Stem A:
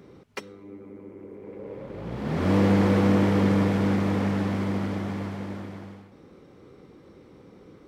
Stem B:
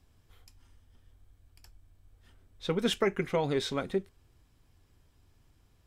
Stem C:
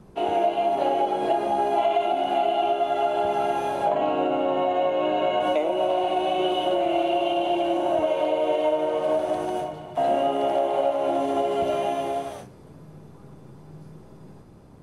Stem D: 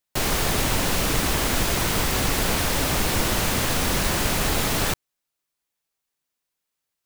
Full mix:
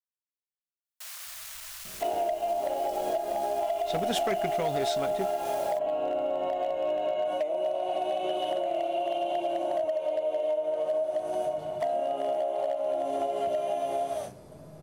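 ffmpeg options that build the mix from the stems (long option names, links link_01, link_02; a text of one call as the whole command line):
ffmpeg -i stem1.wav -i stem2.wav -i stem3.wav -i stem4.wav -filter_complex "[1:a]adelay=1250,volume=-3.5dB[link_01];[2:a]adelay=1850,volume=-4dB[link_02];[3:a]asoftclip=type=tanh:threshold=-19.5dB,highpass=frequency=1100:width=0.5412,highpass=frequency=1100:width=1.3066,adelay=850,volume=-19dB[link_03];[link_02][link_03]amix=inputs=2:normalize=0,equalizer=frequency=630:width=4.7:gain=14,acompressor=threshold=-26dB:ratio=12,volume=0dB[link_04];[link_01][link_04]amix=inputs=2:normalize=0,volume=22dB,asoftclip=hard,volume=-22dB,highshelf=frequency=4100:gain=9" out.wav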